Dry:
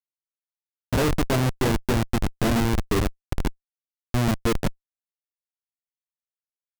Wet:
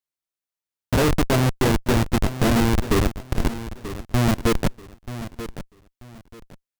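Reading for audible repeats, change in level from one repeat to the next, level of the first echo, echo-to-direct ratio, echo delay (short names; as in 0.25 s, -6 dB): 2, -11.5 dB, -13.0 dB, -12.5 dB, 0.935 s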